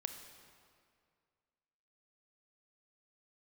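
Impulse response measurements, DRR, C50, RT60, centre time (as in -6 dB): 6.5 dB, 7.5 dB, 2.2 s, 31 ms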